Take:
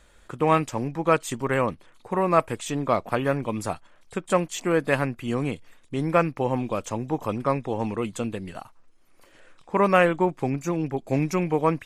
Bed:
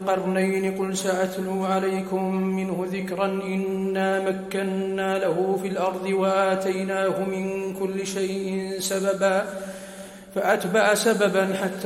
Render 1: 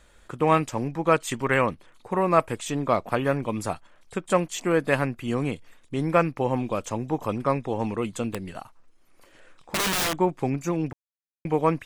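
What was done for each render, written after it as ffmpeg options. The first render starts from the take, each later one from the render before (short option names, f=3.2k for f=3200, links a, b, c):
-filter_complex "[0:a]asettb=1/sr,asplit=3[a][b][c];[a]atrim=end=1.274[d];[b]atrim=start=1.27:end=1.68,asetpts=PTS-STARTPTS,afade=t=in:d=0.004:c=qsin,afade=t=out:st=0.406:d=0.004:c=qsin,equalizer=f=2.2k:t=o:w=1.5:g=6[e];[c]atrim=start=1.676[f];[d][e]acrossfade=d=0.004:c1=hsin:c2=qsin[g];[g][f]acrossfade=d=0.004:c1=qsin:c2=hsin,asettb=1/sr,asplit=3[h][i][j];[h]atrim=end=8.294[k];[i]atrim=start=8.29:end=10.19,asetpts=PTS-STARTPTS,afade=t=in:d=0.004:c=qsin,afade=t=out:st=1.896:d=0.004:c=qsin,aeval=exprs='(mod(10*val(0)+1,2)-1)/10':c=same[l];[j]atrim=start=10.186[m];[k][l]acrossfade=d=0.004:c1=hsin:c2=qsin[n];[n][m]acrossfade=d=0.004:c1=qsin:c2=hsin,asplit=3[o][p][q];[o]atrim=end=10.93,asetpts=PTS-STARTPTS,afade=t=out:st=10.926:d=0.004:c=hsin[r];[p]atrim=start=10.93:end=11.45,asetpts=PTS-STARTPTS,volume=0[s];[q]atrim=start=11.45,asetpts=PTS-STARTPTS,afade=t=in:d=0.004:c=hsin[t];[r][s][t]concat=n=3:v=0:a=1"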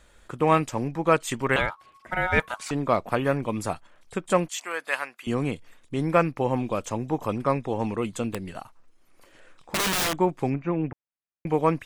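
-filter_complex "[0:a]asettb=1/sr,asplit=3[a][b][c];[a]atrim=end=1.564[d];[b]atrim=start=1.56:end=2.71,asetpts=PTS-STARTPTS,afade=t=in:d=0.004:c=qsin,afade=t=out:st=1.146:d=0.004:c=qsin,aeval=exprs='val(0)*sin(2*PI*1100*n/s)':c=same[e];[c]atrim=start=2.706[f];[d][e]acrossfade=d=0.004:c1=hsin:c2=qsin[g];[g][f]acrossfade=d=0.004:c1=qsin:c2=hsin,asettb=1/sr,asplit=3[h][i][j];[h]atrim=end=4.494[k];[i]atrim=start=4.49:end=5.27,asetpts=PTS-STARTPTS,afade=t=in:d=0.004:c=qsin,afade=t=out:st=0.776:d=0.004:c=qsin,highpass=1k[l];[j]atrim=start=5.266[m];[k][l]acrossfade=d=0.004:c1=hsin:c2=qsin[n];[n][m]acrossfade=d=0.004:c1=qsin:c2=hsin,asettb=1/sr,asplit=3[o][p][q];[o]atrim=end=10.544[r];[p]atrim=start=10.54:end=11.47,asetpts=PTS-STARTPTS,afade=t=in:d=0.004:c=qsin,afade=t=out:st=0.926:d=0.004:c=qsin,lowpass=f=2.6k:w=0.5412,lowpass=f=2.6k:w=1.3066[s];[q]atrim=start=11.466[t];[r][s]acrossfade=d=0.004:c1=hsin:c2=qsin[u];[u][t]acrossfade=d=0.004:c1=qsin:c2=hsin"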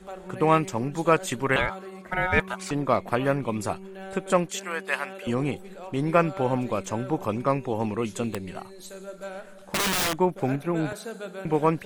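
-filter_complex "[1:a]volume=-16.5dB[a];[0:a][a]amix=inputs=2:normalize=0"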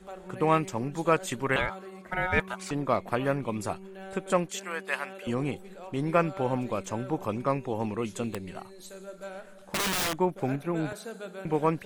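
-af "volume=-3.5dB"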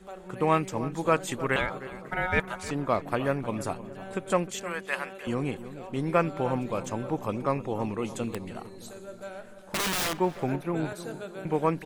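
-filter_complex "[0:a]asplit=2[a][b];[b]adelay=309,lowpass=f=1.4k:p=1,volume=-13dB,asplit=2[c][d];[d]adelay=309,lowpass=f=1.4k:p=1,volume=0.54,asplit=2[e][f];[f]adelay=309,lowpass=f=1.4k:p=1,volume=0.54,asplit=2[g][h];[h]adelay=309,lowpass=f=1.4k:p=1,volume=0.54,asplit=2[i][j];[j]adelay=309,lowpass=f=1.4k:p=1,volume=0.54,asplit=2[k][l];[l]adelay=309,lowpass=f=1.4k:p=1,volume=0.54[m];[a][c][e][g][i][k][m]amix=inputs=7:normalize=0"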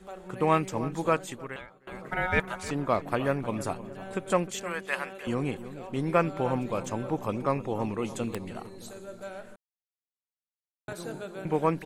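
-filter_complex "[0:a]asplit=4[a][b][c][d];[a]atrim=end=1.87,asetpts=PTS-STARTPTS,afade=t=out:st=1.04:d=0.83:c=qua:silence=0.0707946[e];[b]atrim=start=1.87:end=9.56,asetpts=PTS-STARTPTS,afade=t=in:d=0.004:c=hsin:silence=0.0707946,afade=t=out:st=7.686:d=0.004:c=hsin[f];[c]atrim=start=9.56:end=10.88,asetpts=PTS-STARTPTS,volume=0[g];[d]atrim=start=10.88,asetpts=PTS-STARTPTS,afade=t=in:d=0.004:c=hsin[h];[e][f][g][h]concat=n=4:v=0:a=1"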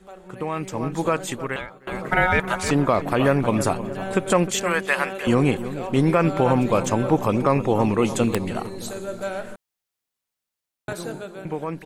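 -af "alimiter=limit=-19dB:level=0:latency=1:release=61,dynaudnorm=f=100:g=21:m=11.5dB"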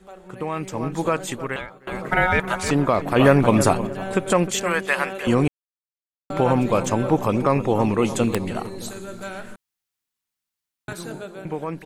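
-filter_complex "[0:a]asettb=1/sr,asplit=3[a][b][c];[a]atrim=end=8.894[d];[b]atrim=start=8.89:end=11.11,asetpts=PTS-STARTPTS,afade=t=in:d=0.004:c=qsin,afade=t=out:st=2.216:d=0.004:c=qsin,equalizer=f=570:t=o:w=0.9:g=-8[e];[c]atrim=start=11.106[f];[d][e]acrossfade=d=0.004:c1=hsin:c2=qsin[g];[g][f]acrossfade=d=0.004:c1=qsin:c2=hsin,asplit=5[h][i][j][k][l];[h]atrim=end=3.162[m];[i]atrim=start=3.158:end=3.872,asetpts=PTS-STARTPTS,volume=4.5dB[n];[j]atrim=start=3.868:end=5.48,asetpts=PTS-STARTPTS,afade=t=out:st=1.608:d=0.004:c=hsin[o];[k]atrim=start=5.48:end=6.3,asetpts=PTS-STARTPTS,volume=0[p];[l]atrim=start=6.3,asetpts=PTS-STARTPTS,afade=t=in:d=0.004:c=hsin[q];[m][n]acrossfade=d=0.004:c1=hsin:c2=hsin[r];[o][p][q]concat=n=3:v=0:a=1[s];[r][s]acrossfade=d=0.004:c1=hsin:c2=hsin"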